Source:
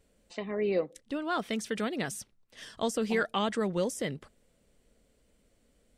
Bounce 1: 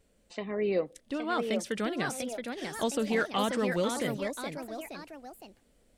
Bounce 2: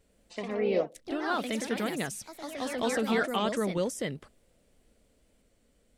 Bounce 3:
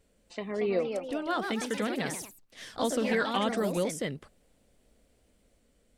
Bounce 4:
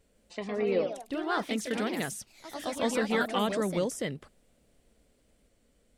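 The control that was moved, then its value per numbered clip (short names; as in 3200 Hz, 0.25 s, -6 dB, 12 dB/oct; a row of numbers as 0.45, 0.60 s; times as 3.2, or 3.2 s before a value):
echoes that change speed, time: 860, 95, 273, 150 ms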